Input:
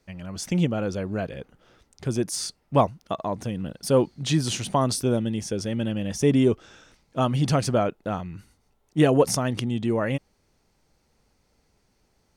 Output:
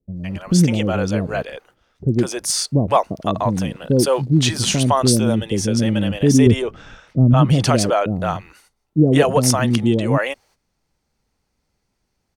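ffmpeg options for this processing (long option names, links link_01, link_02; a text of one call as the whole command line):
ffmpeg -i in.wav -filter_complex "[0:a]asettb=1/sr,asplit=3[link_01][link_02][link_03];[link_01]atrim=end=6.464[link_04];[link_02]atrim=start=6.46:end=7.34,asetpts=PTS-STARTPTS,afade=type=in:duration=0.004:curve=qsin,afade=type=out:start_time=0.876:duration=0.004:curve=qsin,bass=frequency=250:gain=9,treble=frequency=4000:gain=-11[link_05];[link_03]atrim=start=7.336[link_06];[link_04][link_05]acrossfade=duration=0.004:curve1=hsin:curve2=qsin[link_07];[link_07][link_06]acrossfade=duration=0.004:curve1=qsin:curve2=hsin,agate=range=-14dB:threshold=-52dB:ratio=16:detection=peak,asplit=2[link_08][link_09];[link_09]alimiter=limit=-16dB:level=0:latency=1:release=60,volume=1dB[link_10];[link_08][link_10]amix=inputs=2:normalize=0,asettb=1/sr,asplit=3[link_11][link_12][link_13];[link_11]atrim=end=3.914[link_14];[link_12]atrim=start=3.91:end=4.45,asetpts=PTS-STARTPTS,afade=type=in:duration=0.004:curve=qsin,afade=type=out:start_time=0.536:duration=0.004:curve=qsin,aeval=exprs='sgn(val(0))*max(abs(val(0))-0.00376,0)':channel_layout=same[link_15];[link_13]atrim=start=4.446[link_16];[link_14][link_15]acrossfade=duration=0.004:curve1=hsin:curve2=qsin[link_17];[link_17][link_16]acrossfade=duration=0.004:curve1=qsin:curve2=hsin,acrossover=split=460[link_18][link_19];[link_19]adelay=160[link_20];[link_18][link_20]amix=inputs=2:normalize=0,volume=3dB" out.wav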